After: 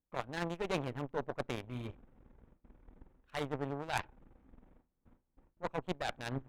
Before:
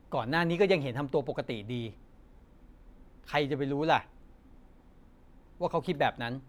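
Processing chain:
adaptive Wiener filter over 9 samples
noise gate with hold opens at −47 dBFS
reversed playback
downward compressor 6 to 1, threshold −40 dBFS, peak gain reduction 18.5 dB
reversed playback
harmonic generator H 4 −10 dB, 5 −12 dB, 7 −11 dB, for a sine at −25 dBFS
level +5 dB

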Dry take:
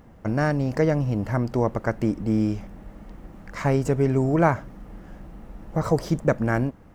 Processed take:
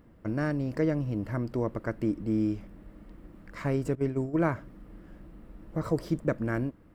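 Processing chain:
0:03.95–0:04.52: noise gate −20 dBFS, range −13 dB
thirty-one-band graphic EQ 315 Hz +6 dB, 800 Hz −8 dB, 6,300 Hz −8 dB
level −7.5 dB

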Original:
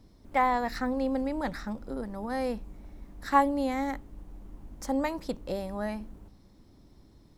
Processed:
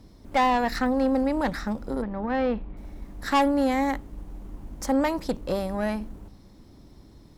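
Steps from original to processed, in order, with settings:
0:02.02–0:02.77: low-pass filter 3,300 Hz 24 dB per octave
tube saturation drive 24 dB, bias 0.4
level +8 dB

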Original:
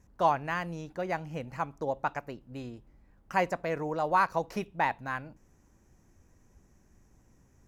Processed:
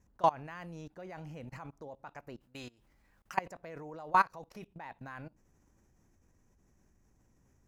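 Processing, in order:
0:02.40–0:03.37: tilt shelving filter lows −7.5 dB, about 890 Hz
output level in coarse steps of 23 dB
level +1 dB

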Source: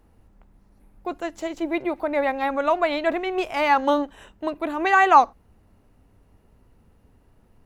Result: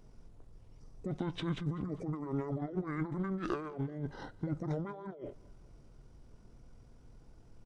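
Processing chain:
compressor whose output falls as the input rises −32 dBFS, ratio −1
pitch shifter −11.5 semitones
on a send: repeating echo 197 ms, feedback 44%, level −22 dB
on the sum: level −6.5 dB

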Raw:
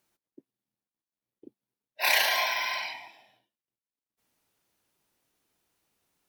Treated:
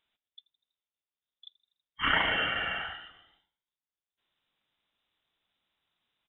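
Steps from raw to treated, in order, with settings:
echo with shifted repeats 81 ms, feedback 59%, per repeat −53 Hz, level −22 dB
voice inversion scrambler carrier 3,800 Hz
level −1.5 dB

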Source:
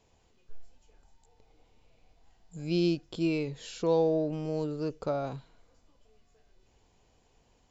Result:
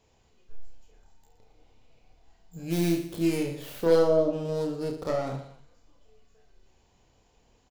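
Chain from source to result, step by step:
stylus tracing distortion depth 0.4 ms
0:03.46–0:04.37: parametric band 580 Hz +8 dB 0.35 octaves
reverse bouncing-ball delay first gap 30 ms, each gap 1.3×, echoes 5

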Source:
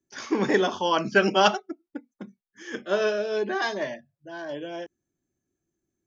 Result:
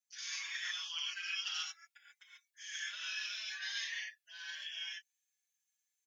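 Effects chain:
inverse Chebyshev high-pass filter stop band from 360 Hz, stop band 80 dB
reversed playback
downward compressor 5 to 1, threshold −42 dBFS, peak gain reduction 19 dB
reversed playback
reverb whose tail is shaped and stops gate 160 ms rising, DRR −5.5 dB
barber-pole flanger 5.6 ms +2.3 Hz
level +2 dB

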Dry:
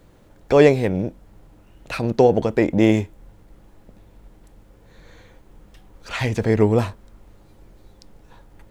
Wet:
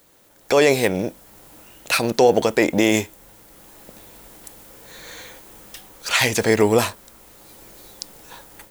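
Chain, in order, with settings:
RIAA equalisation recording
brickwall limiter −10 dBFS, peak gain reduction 7.5 dB
automatic gain control gain up to 12 dB
level −2 dB

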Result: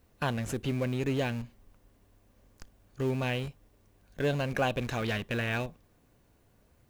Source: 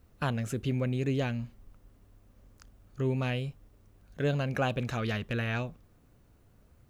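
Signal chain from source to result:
low-shelf EQ 230 Hz −7.5 dB
notch filter 1,300 Hz, Q 8.3
in parallel at −7 dB: comparator with hysteresis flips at −35.5 dBFS
on the sum: level +1.5 dB

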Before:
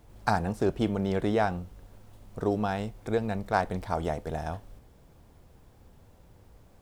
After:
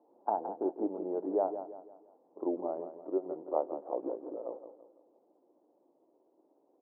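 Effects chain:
pitch glide at a constant tempo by −7.5 semitones starting unshifted
elliptic band-pass filter 290–910 Hz, stop band 70 dB
repeating echo 168 ms, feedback 41%, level −10.5 dB
level −2.5 dB

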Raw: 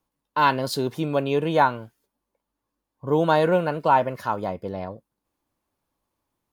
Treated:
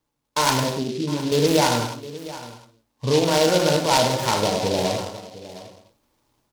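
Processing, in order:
automatic gain control gain up to 8.5 dB
brickwall limiter −12.5 dBFS, peak gain reduction 11 dB
0:00.63–0:01.32: resonant band-pass 230 Hz, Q 2.3
single-tap delay 709 ms −16.5 dB
reverb whose tail is shaped and stops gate 310 ms falling, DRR −0.5 dB
short delay modulated by noise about 3,800 Hz, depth 0.096 ms

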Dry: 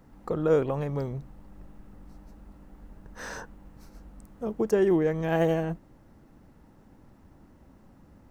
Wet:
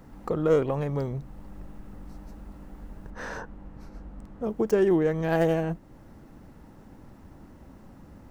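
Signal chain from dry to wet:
stylus tracing distortion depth 0.059 ms
0:03.10–0:04.44: low-pass filter 2,100 Hz 6 dB per octave
in parallel at 0 dB: downward compressor, threshold −42 dBFS, peak gain reduction 22 dB

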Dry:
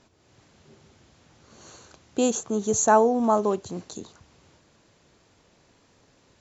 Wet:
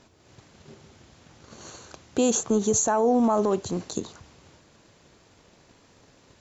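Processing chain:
transient designer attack +8 dB, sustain +3 dB
brickwall limiter −16.5 dBFS, peak gain reduction 14.5 dB
level +3 dB

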